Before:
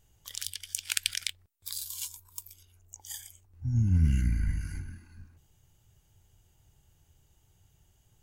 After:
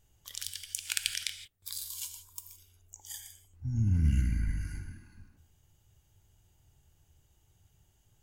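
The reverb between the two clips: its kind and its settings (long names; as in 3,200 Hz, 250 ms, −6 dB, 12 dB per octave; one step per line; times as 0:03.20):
reverb whose tail is shaped and stops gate 190 ms flat, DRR 8 dB
level −2.5 dB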